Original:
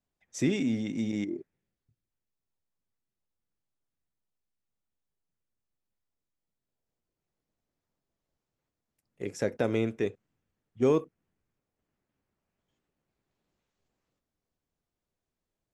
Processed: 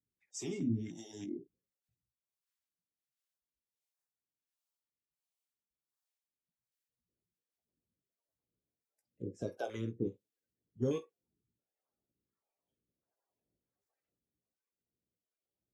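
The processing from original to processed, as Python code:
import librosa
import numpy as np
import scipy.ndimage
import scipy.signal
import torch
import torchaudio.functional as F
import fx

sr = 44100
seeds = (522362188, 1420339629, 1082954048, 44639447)

y = fx.spec_quant(x, sr, step_db=30)
y = scipy.signal.sosfilt(scipy.signal.butter(2, 58.0, 'highpass', fs=sr, output='sos'), y)
y = fx.room_early_taps(y, sr, ms=(17, 50), db=(-7.0, -18.0))
y = fx.harmonic_tremolo(y, sr, hz=1.4, depth_pct=100, crossover_hz=500.0)
y = fx.filter_held_notch(y, sr, hz=3.3, low_hz=700.0, high_hz=2900.0)
y = F.gain(torch.from_numpy(y), -3.5).numpy()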